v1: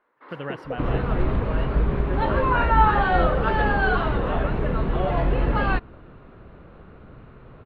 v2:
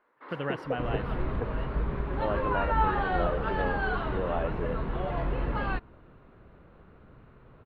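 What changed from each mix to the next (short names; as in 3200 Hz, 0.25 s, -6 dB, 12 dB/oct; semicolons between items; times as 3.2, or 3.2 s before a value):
second sound -8.5 dB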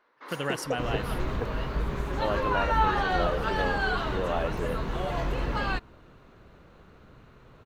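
master: remove air absorption 430 m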